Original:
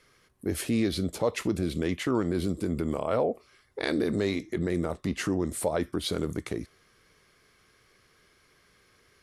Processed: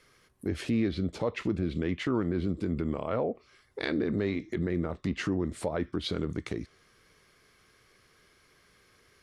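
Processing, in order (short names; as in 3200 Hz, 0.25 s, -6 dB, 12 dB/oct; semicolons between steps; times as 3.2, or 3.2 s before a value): treble ducked by the level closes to 2400 Hz, closed at -24 dBFS; dynamic EQ 680 Hz, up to -5 dB, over -40 dBFS, Q 0.78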